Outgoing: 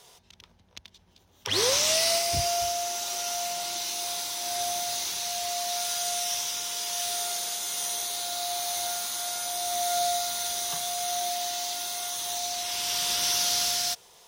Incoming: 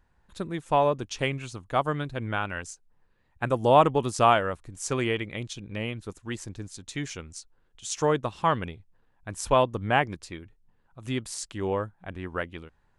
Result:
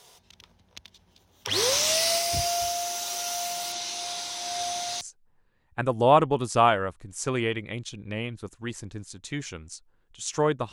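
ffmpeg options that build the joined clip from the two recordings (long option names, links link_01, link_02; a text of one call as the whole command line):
ffmpeg -i cue0.wav -i cue1.wav -filter_complex "[0:a]asettb=1/sr,asplit=3[link_01][link_02][link_03];[link_01]atrim=end=3.724[link_04];[link_02]atrim=start=3.72:end=5.01,asetpts=PTS-STARTPTS,afade=type=in:duration=0.004:curve=qsin,afade=type=out:start_time=1.286:duration=0.004:curve=qsin,lowpass=7300[link_05];[link_03]atrim=start=5.006[link_06];[link_04][link_05]acrossfade=duration=0.004:curve1=hsin:curve2=qsin[link_07];[link_07][link_06]acrossfade=duration=0.004:curve1=qsin:curve2=hsin,apad=whole_dur=10.72,atrim=end=10.72,atrim=end=5.012[link_08];[1:a]atrim=start=2.648:end=8.36[link_09];[link_08][link_09]acrossfade=duration=0.004:curve1=hsin:curve2=hsin" out.wav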